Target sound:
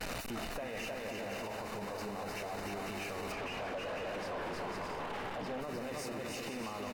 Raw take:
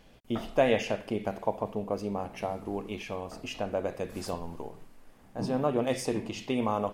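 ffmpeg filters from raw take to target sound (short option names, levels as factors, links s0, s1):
-filter_complex "[0:a]aeval=exprs='val(0)+0.5*0.0398*sgn(val(0))':c=same,asuperstop=centerf=3300:order=4:qfactor=7.5,aecho=1:1:310|496|607.6|674.6|714.7:0.631|0.398|0.251|0.158|0.1,acompressor=threshold=0.0224:ratio=4,tiltshelf=f=820:g=-5.5,asettb=1/sr,asplit=3[s0][s1][s2];[s0]atrim=end=3.324[s3];[s1]atrim=start=3.32:end=5.61,asetpts=PTS-STARTPTS,afade=t=in:d=0.004:c=qsin,afade=t=out:st=2.286:d=0.004:c=qsin,asplit=2[s4][s5];[s5]highpass=f=720:p=1,volume=20,asoftclip=type=tanh:threshold=0.075[s6];[s4][s6]amix=inputs=2:normalize=0,lowpass=f=1100:p=1,volume=0.501[s7];[s2]atrim=start=5.606[s8];[s3][s7]acrossfade=d=0.004:c1=hsin:c2=qsin[s9];[s9][s8]acrossfade=d=0.004:c1=qsin:c2=hsin,highshelf=f=3300:g=-10.5,agate=range=0.0224:threshold=0.02:ratio=3:detection=peak,alimiter=level_in=3.98:limit=0.0631:level=0:latency=1:release=29,volume=0.251,volume=1.5" -ar 44100 -c:a aac -b:a 64k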